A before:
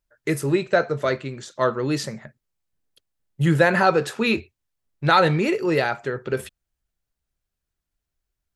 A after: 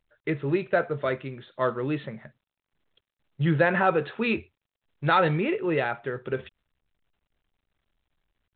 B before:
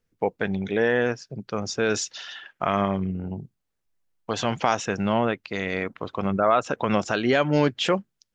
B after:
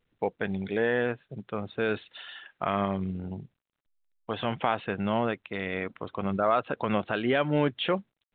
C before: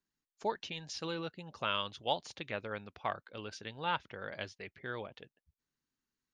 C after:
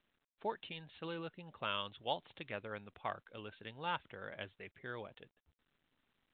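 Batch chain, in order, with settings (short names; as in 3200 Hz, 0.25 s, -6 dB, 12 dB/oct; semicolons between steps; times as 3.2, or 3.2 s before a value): gain -4.5 dB; µ-law 64 kbps 8000 Hz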